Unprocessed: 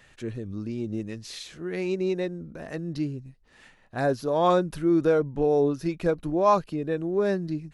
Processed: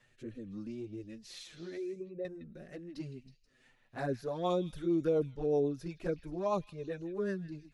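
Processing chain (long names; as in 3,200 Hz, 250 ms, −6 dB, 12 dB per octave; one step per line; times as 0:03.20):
0:01.77–0:02.25: spectral envelope exaggerated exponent 2
flanger swept by the level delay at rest 8.6 ms, full sweep at −17.5 dBFS
rotating-speaker cabinet horn 1.2 Hz, later 8 Hz, at 0:03.87
on a send: echo through a band-pass that steps 160 ms, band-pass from 2,800 Hz, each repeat 0.7 octaves, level −10 dB
on the sum: level −5.5 dB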